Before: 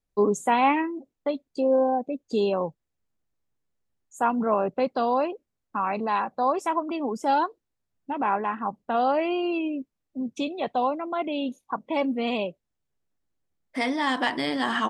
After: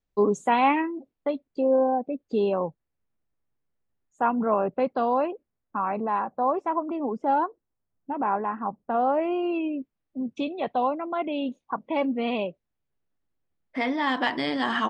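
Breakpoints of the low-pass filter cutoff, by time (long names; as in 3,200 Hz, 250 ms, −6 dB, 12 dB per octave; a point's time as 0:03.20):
0:00.76 5,400 Hz
0:01.50 2,500 Hz
0:05.22 2,500 Hz
0:06.13 1,400 Hz
0:09.14 1,400 Hz
0:09.75 3,200 Hz
0:13.92 3,200 Hz
0:14.34 5,400 Hz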